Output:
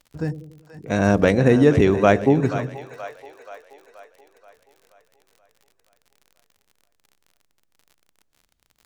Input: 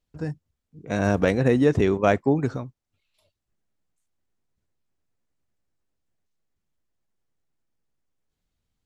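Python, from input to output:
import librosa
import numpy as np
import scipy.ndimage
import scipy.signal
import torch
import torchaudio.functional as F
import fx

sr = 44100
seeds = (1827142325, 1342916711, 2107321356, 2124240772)

y = fx.echo_split(x, sr, split_hz=530.0, low_ms=94, high_ms=479, feedback_pct=52, wet_db=-11.5)
y = fx.dmg_crackle(y, sr, seeds[0], per_s=53.0, level_db=-44.0)
y = F.gain(torch.from_numpy(y), 4.0).numpy()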